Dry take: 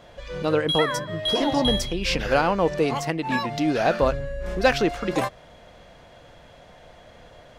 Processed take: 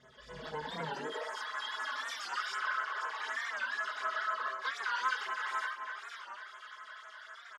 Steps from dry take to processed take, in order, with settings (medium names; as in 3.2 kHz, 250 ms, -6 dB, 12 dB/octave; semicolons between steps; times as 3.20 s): comb filter that takes the minimum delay 0.58 ms; low-pass 7.6 kHz 12 dB/octave; bass shelf 260 Hz -12 dB; band-stop 2.4 kHz, Q 18; echo whose repeats swap between lows and highs 254 ms, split 2.1 kHz, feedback 56%, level -11.5 dB; gated-style reverb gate 470 ms rising, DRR -7 dB; high-pass sweep 78 Hz -> 1.2 kHz, 0.72–1.41 s; compression 3:1, threshold -31 dBFS, peak gain reduction 16 dB; feedback comb 130 Hz, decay 0.17 s, harmonics all, mix 90%; phase shifter stages 12, 4 Hz, lowest notch 120–5000 Hz; comb 4.7 ms, depth 86%; warped record 45 rpm, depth 160 cents